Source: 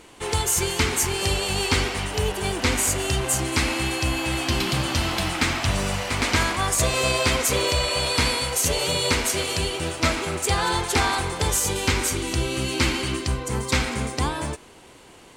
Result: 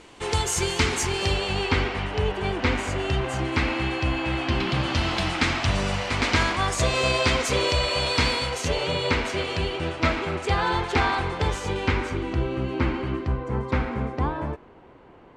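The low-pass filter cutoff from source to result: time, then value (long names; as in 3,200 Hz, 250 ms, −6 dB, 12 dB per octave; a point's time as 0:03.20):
0:00.93 6,700 Hz
0:01.74 2,800 Hz
0:04.61 2,800 Hz
0:05.17 5,200 Hz
0:08.37 5,200 Hz
0:08.84 3,000 Hz
0:11.51 3,000 Hz
0:12.62 1,400 Hz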